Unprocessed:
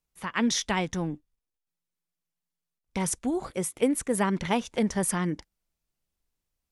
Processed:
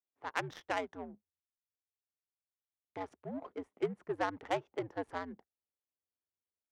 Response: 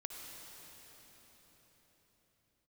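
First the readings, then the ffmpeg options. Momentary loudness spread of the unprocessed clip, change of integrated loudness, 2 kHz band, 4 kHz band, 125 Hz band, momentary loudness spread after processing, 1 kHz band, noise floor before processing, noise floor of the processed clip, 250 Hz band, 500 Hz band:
7 LU, -11.5 dB, -8.0 dB, -15.5 dB, -16.5 dB, 11 LU, -6.5 dB, under -85 dBFS, under -85 dBFS, -16.5 dB, -8.0 dB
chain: -af "afreqshift=-93,highpass=410,adynamicsmooth=sensitivity=1.5:basefreq=590,volume=0.631"

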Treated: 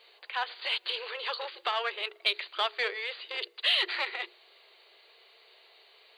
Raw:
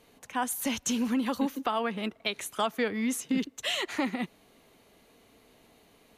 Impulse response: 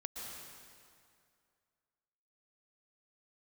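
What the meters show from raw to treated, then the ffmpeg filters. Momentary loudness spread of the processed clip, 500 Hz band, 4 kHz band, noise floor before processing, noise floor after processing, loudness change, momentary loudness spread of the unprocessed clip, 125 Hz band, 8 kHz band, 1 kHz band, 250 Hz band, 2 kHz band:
10 LU, -4.5 dB, +6.5 dB, -62 dBFS, -60 dBFS, 0.0 dB, 5 LU, under -30 dB, under -20 dB, -2.0 dB, -29.5 dB, +4.0 dB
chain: -filter_complex "[0:a]aeval=exprs='0.168*(cos(1*acos(clip(val(0)/0.168,-1,1)))-cos(1*PI/2))+0.0106*(cos(5*acos(clip(val(0)/0.168,-1,1)))-cos(5*PI/2))+0.0133*(cos(6*acos(clip(val(0)/0.168,-1,1)))-cos(6*PI/2))':c=same,tiltshelf=f=1200:g=-4.5,bandreject=f=60:t=h:w=6,bandreject=f=120:t=h:w=6,bandreject=f=180:t=h:w=6,bandreject=f=240:t=h:w=6,bandreject=f=300:t=h:w=6,bandreject=f=360:t=h:w=6,bandreject=f=420:t=h:w=6,bandreject=f=480:t=h:w=6,afftfilt=real='re*between(b*sr/4096,340,4800)':imag='im*between(b*sr/4096,340,4800)':win_size=4096:overlap=0.75,highshelf=f=2900:g=8.5,asplit=2[s0][s1];[s1]asoftclip=type=tanh:threshold=0.0631,volume=0.316[s2];[s0][s2]amix=inputs=2:normalize=0,acrusher=bits=11:mix=0:aa=0.000001,volume=0.596"

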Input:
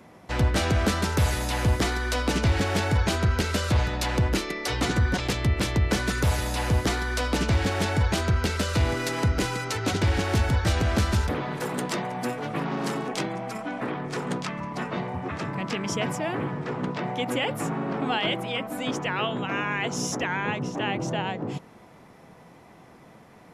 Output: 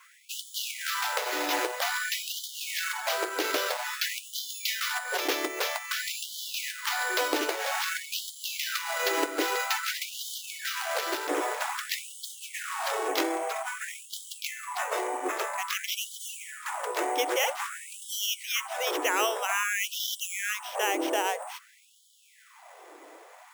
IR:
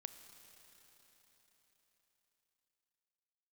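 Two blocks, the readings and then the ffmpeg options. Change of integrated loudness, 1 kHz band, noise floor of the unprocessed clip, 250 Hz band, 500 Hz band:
-3.5 dB, -1.0 dB, -51 dBFS, -12.0 dB, -3.0 dB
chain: -filter_complex "[0:a]acrusher=samples=5:mix=1:aa=0.000001,adynamicequalizer=threshold=0.00891:dfrequency=150:dqfactor=3.9:tfrequency=150:tqfactor=3.9:attack=5:release=100:ratio=0.375:range=3:mode=cutabove:tftype=bell,acompressor=threshold=0.0708:ratio=16,asplit=2[s0][s1];[1:a]atrim=start_sample=2205,atrim=end_sample=4410[s2];[s1][s2]afir=irnorm=-1:irlink=0,volume=0.891[s3];[s0][s3]amix=inputs=2:normalize=0,afftfilt=real='re*gte(b*sr/1024,270*pow(3000/270,0.5+0.5*sin(2*PI*0.51*pts/sr)))':imag='im*gte(b*sr/1024,270*pow(3000/270,0.5+0.5*sin(2*PI*0.51*pts/sr)))':win_size=1024:overlap=0.75"

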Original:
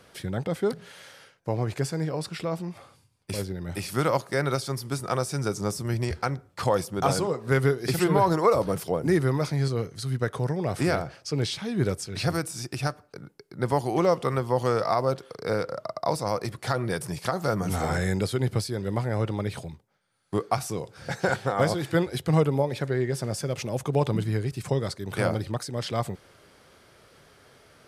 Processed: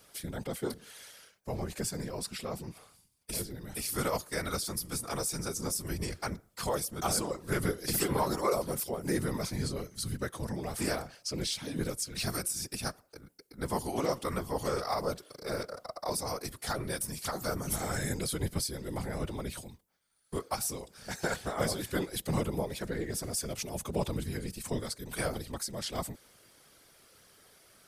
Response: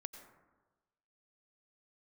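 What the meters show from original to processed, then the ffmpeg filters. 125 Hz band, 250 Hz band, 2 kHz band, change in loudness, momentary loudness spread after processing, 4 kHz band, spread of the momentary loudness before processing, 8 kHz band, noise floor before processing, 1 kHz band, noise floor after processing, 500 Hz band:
-10.5 dB, -7.5 dB, -6.5 dB, -7.0 dB, 9 LU, -2.0 dB, 9 LU, +3.0 dB, -60 dBFS, -8.5 dB, -65 dBFS, -9.0 dB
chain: -af "afftfilt=real='hypot(re,im)*cos(2*PI*random(0))':imag='hypot(re,im)*sin(2*PI*random(1))':win_size=512:overlap=0.75,aemphasis=mode=production:type=75kf,volume=0.708"

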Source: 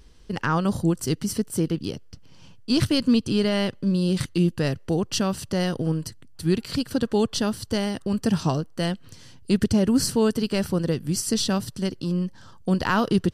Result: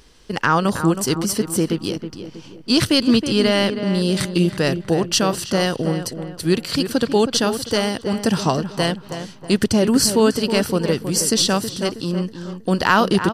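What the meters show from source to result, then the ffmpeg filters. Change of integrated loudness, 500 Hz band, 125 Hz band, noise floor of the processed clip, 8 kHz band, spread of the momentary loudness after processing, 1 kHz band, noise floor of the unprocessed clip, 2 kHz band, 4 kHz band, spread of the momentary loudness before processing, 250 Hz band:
+5.0 dB, +6.5 dB, +2.0 dB, -42 dBFS, +8.5 dB, 10 LU, +8.5 dB, -47 dBFS, +8.5 dB, +8.5 dB, 9 LU, +3.5 dB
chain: -filter_complex "[0:a]lowshelf=f=220:g=-11.5,asplit=2[s0][s1];[s1]adelay=320,lowpass=f=2100:p=1,volume=0.355,asplit=2[s2][s3];[s3]adelay=320,lowpass=f=2100:p=1,volume=0.43,asplit=2[s4][s5];[s5]adelay=320,lowpass=f=2100:p=1,volume=0.43,asplit=2[s6][s7];[s7]adelay=320,lowpass=f=2100:p=1,volume=0.43,asplit=2[s8][s9];[s9]adelay=320,lowpass=f=2100:p=1,volume=0.43[s10];[s2][s4][s6][s8][s10]amix=inputs=5:normalize=0[s11];[s0][s11]amix=inputs=2:normalize=0,volume=2.66"

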